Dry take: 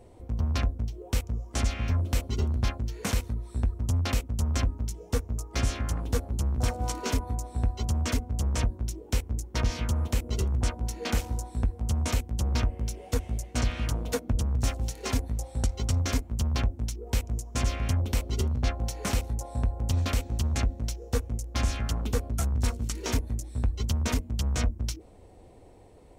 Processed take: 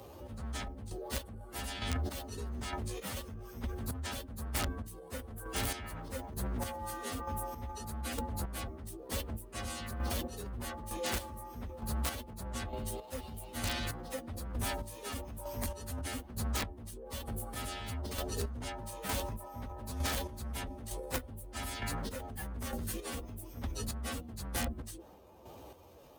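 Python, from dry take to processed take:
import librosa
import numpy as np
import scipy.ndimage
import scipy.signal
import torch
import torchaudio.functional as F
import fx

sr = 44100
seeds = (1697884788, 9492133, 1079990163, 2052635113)

y = fx.partial_stretch(x, sr, pct=114)
y = scipy.signal.sosfilt(scipy.signal.butter(4, 58.0, 'highpass', fs=sr, output='sos'), y)
y = fx.low_shelf(y, sr, hz=290.0, db=-7.5)
y = fx.transient(y, sr, attack_db=-2, sustain_db=7)
y = fx.chopper(y, sr, hz=1.1, depth_pct=60, duty_pct=30)
y = (np.mod(10.0 ** (27.5 / 20.0) * y + 1.0, 2.0) - 1.0) / 10.0 ** (27.5 / 20.0)
y = fx.band_squash(y, sr, depth_pct=40)
y = y * librosa.db_to_amplitude(3.5)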